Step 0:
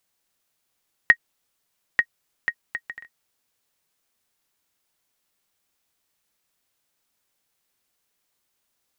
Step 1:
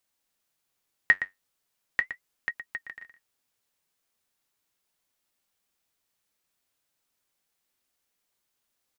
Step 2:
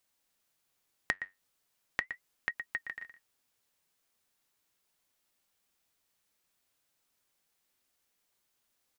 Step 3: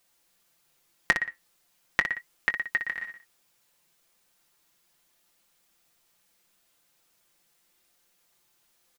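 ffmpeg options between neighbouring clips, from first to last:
-filter_complex "[0:a]asplit=2[a][b];[b]adelay=116.6,volume=-11dB,highshelf=f=4k:g=-2.62[c];[a][c]amix=inputs=2:normalize=0,flanger=delay=3.2:depth=7.4:regen=-65:speed=0.38:shape=sinusoidal"
-af "acompressor=threshold=-30dB:ratio=16,volume=1dB"
-filter_complex "[0:a]aecho=1:1:5.8:0.53,asplit=2[a][b];[b]aecho=0:1:21|60:0.188|0.376[c];[a][c]amix=inputs=2:normalize=0,volume=7.5dB"

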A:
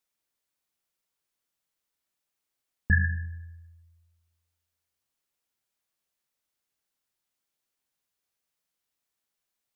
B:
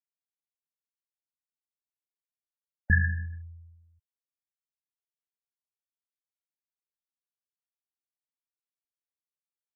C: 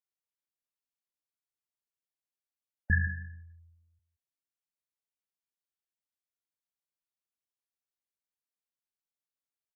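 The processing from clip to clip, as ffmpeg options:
-af "bandreject=f=63.94:t=h:w=4,bandreject=f=127.88:t=h:w=4,bandreject=f=191.82:t=h:w=4,afftfilt=real='re*gte(hypot(re,im),0.01)':imag='im*gte(hypot(re,im),0.01)':win_size=1024:overlap=0.75"
-af "aecho=1:1:173:0.158,volume=-4dB"

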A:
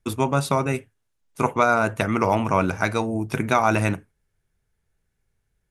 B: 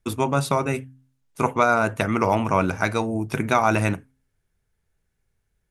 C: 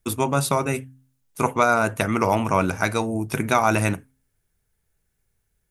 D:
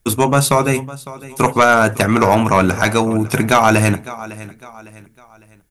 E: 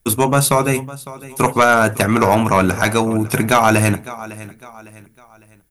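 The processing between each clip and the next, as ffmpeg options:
-af "bandreject=f=131.5:t=h:w=4,bandreject=f=263:t=h:w=4"
-af "highshelf=f=8.2k:g=12"
-af "aecho=1:1:555|1110|1665:0.112|0.0426|0.0162,aeval=exprs='0.708*sin(PI/2*1.78*val(0)/0.708)':c=same"
-af "aexciter=amount=1.5:drive=5.4:freq=9.9k,volume=-1dB"

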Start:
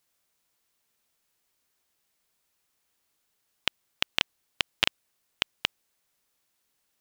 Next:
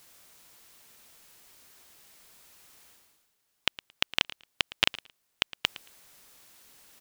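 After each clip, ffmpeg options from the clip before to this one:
-af "areverse,acompressor=mode=upward:threshold=-40dB:ratio=2.5,areverse,aecho=1:1:112|224:0.126|0.0214"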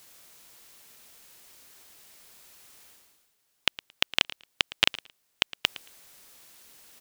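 -filter_complex "[0:a]tiltshelf=f=700:g=-5,acrossover=split=640|4100[a][b][c];[a]acontrast=88[d];[d][b][c]amix=inputs=3:normalize=0,volume=-2dB"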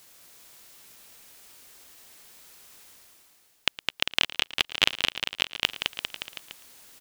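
-af "aecho=1:1:210|399|569.1|722.2|860:0.631|0.398|0.251|0.158|0.1"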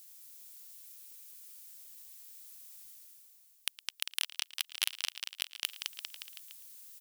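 -af "aeval=exprs='0.891*(cos(1*acos(clip(val(0)/0.891,-1,1)))-cos(1*PI/2))+0.178*(cos(4*acos(clip(val(0)/0.891,-1,1)))-cos(4*PI/2))':c=same,aderivative,volume=-3.5dB"

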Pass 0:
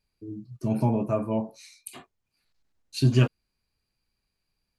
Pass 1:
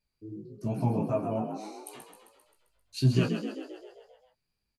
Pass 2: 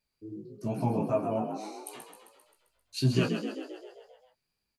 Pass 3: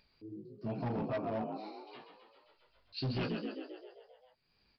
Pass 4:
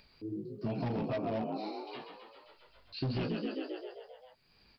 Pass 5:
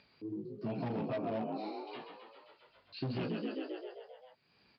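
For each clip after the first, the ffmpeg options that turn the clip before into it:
-filter_complex "[0:a]flanger=delay=15.5:depth=4.3:speed=2.6,asplit=2[a][b];[b]asplit=8[c][d][e][f][g][h][i][j];[c]adelay=132,afreqshift=48,volume=-7.5dB[k];[d]adelay=264,afreqshift=96,volume=-12.1dB[l];[e]adelay=396,afreqshift=144,volume=-16.7dB[m];[f]adelay=528,afreqshift=192,volume=-21.2dB[n];[g]adelay=660,afreqshift=240,volume=-25.8dB[o];[h]adelay=792,afreqshift=288,volume=-30.4dB[p];[i]adelay=924,afreqshift=336,volume=-35dB[q];[j]adelay=1056,afreqshift=384,volume=-39.6dB[r];[k][l][m][n][o][p][q][r]amix=inputs=8:normalize=0[s];[a][s]amix=inputs=2:normalize=0,volume=-1.5dB"
-af "lowshelf=f=150:g=-8.5,volume=2dB"
-af "acompressor=mode=upward:threshold=-50dB:ratio=2.5,aresample=11025,asoftclip=type=hard:threshold=-26.5dB,aresample=44100,volume=-5dB"
-filter_complex "[0:a]acrossover=split=830|2200[a][b][c];[a]acompressor=threshold=-41dB:ratio=4[d];[b]acompressor=threshold=-60dB:ratio=4[e];[c]acompressor=threshold=-55dB:ratio=4[f];[d][e][f]amix=inputs=3:normalize=0,volume=8dB"
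-filter_complex "[0:a]asplit=2[a][b];[b]asoftclip=type=tanh:threshold=-34.5dB,volume=-11dB[c];[a][c]amix=inputs=2:normalize=0,highpass=120,lowpass=4.1k,volume=-3dB"

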